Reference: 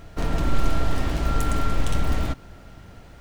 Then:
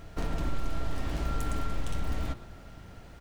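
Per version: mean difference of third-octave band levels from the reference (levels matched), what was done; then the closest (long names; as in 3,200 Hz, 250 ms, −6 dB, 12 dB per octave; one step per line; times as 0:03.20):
2.5 dB: hum removal 118.2 Hz, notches 36
on a send: single-tap delay 117 ms −19 dB
on the sum: downward compressor 2 to 1, threshold −27 dBFS, peak gain reduction 9 dB
level −3 dB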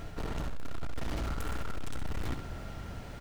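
6.5 dB: reversed playback
downward compressor 6 to 1, threshold −27 dBFS, peak gain reduction 14.5 dB
reversed playback
gain into a clipping stage and back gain 34 dB
repeating echo 69 ms, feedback 31%, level −8 dB
level +2 dB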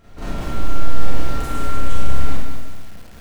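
4.5 dB: downward compressor 3 to 1, threshold −18 dBFS, peak gain reduction 5.5 dB
four-comb reverb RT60 0.8 s, combs from 30 ms, DRR −9 dB
feedback echo at a low word length 194 ms, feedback 35%, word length 5 bits, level −7 dB
level −9 dB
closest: first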